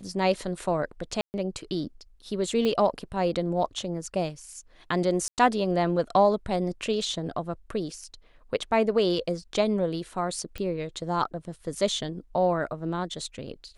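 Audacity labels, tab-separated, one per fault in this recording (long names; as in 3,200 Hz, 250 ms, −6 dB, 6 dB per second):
1.210000	1.340000	drop-out 129 ms
2.650000	2.650000	click −16 dBFS
5.280000	5.380000	drop-out 98 ms
10.580000	10.580000	click −21 dBFS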